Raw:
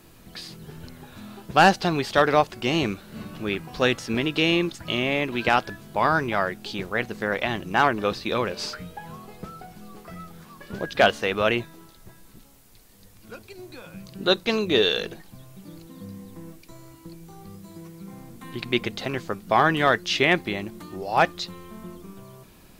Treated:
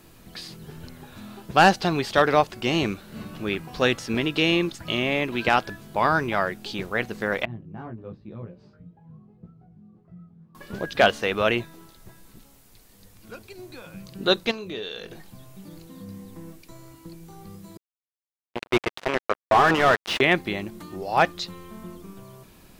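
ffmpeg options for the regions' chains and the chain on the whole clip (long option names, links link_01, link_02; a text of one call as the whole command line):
ffmpeg -i in.wav -filter_complex "[0:a]asettb=1/sr,asplit=3[link_01][link_02][link_03];[link_01]atrim=end=7.454[link_04];[link_02]atrim=start=7.45:end=10.55,asetpts=PTS-STARTPTS,afade=type=in:duration=0.004:curve=qsin,afade=type=out:start_time=3.096:duration=0.004:curve=qsin,flanger=delay=17:depth=2.3:speed=1.9,bandpass=frequency=130:width_type=q:width=1.4[link_05];[link_03]atrim=start=10.546[link_06];[link_04][link_05]acrossfade=duration=0.004:curve1=hsin:curve2=qsin[link_07];[link_07][link_06]acrossfade=duration=0.004:curve1=qsin:curve2=hsin,asettb=1/sr,asplit=3[link_08][link_09][link_10];[link_08]atrim=end=14.514[link_11];[link_09]atrim=start=14.51:end=16.08,asetpts=PTS-STARTPTS,afade=type=in:duration=0.004:curve=qsin,afade=type=out:start_time=1.566:duration=0.004:curve=qsin,acompressor=threshold=-37dB:ratio=2.5:attack=3.2:release=140:knee=1:detection=peak,asplit=2[link_12][link_13];[link_13]adelay=26,volume=-10.5dB[link_14];[link_12][link_14]amix=inputs=2:normalize=0,atrim=end_sample=69237[link_15];[link_10]atrim=start=16.076[link_16];[link_11][link_15]acrossfade=duration=0.004:curve1=hsin:curve2=qsin[link_17];[link_17][link_16]acrossfade=duration=0.004:curve1=qsin:curve2=hsin,asettb=1/sr,asplit=3[link_18][link_19][link_20];[link_18]atrim=end=17.774[link_21];[link_19]atrim=start=17.77:end=20.21,asetpts=PTS-STARTPTS,afade=type=in:duration=0.004:curve=qsin,afade=type=out:start_time=2.436:duration=0.004:curve=qsin,acrusher=bits=3:mix=0:aa=0.5,asplit=2[link_22][link_23];[link_23]highpass=frequency=720:poles=1,volume=19dB,asoftclip=type=tanh:threshold=-6dB[link_24];[link_22][link_24]amix=inputs=2:normalize=0,lowpass=frequency=1000:poles=1,volume=-6dB[link_25];[link_20]atrim=start=20.206[link_26];[link_21][link_25]acrossfade=duration=0.004:curve1=hsin:curve2=qsin[link_27];[link_27][link_26]acrossfade=duration=0.004:curve1=qsin:curve2=hsin" out.wav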